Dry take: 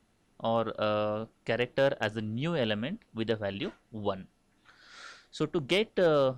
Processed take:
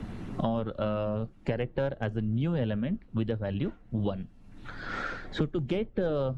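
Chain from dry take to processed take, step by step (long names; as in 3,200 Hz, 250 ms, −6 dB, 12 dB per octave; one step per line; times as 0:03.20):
spectral magnitudes quantised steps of 15 dB
RIAA equalisation playback
multiband upward and downward compressor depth 100%
level −5 dB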